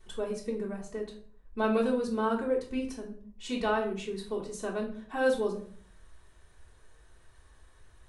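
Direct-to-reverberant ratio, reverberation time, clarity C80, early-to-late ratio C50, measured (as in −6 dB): −5.5 dB, 0.50 s, 12.5 dB, 8.5 dB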